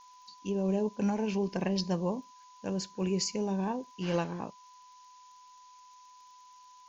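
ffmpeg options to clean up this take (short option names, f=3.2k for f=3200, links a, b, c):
-af "adeclick=t=4,bandreject=f=1k:w=30,afftdn=nr=23:nf=-56"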